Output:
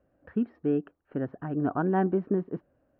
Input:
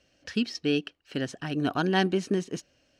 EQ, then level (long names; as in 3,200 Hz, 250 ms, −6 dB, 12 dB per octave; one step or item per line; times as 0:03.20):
low-pass filter 1,300 Hz 24 dB per octave
0.0 dB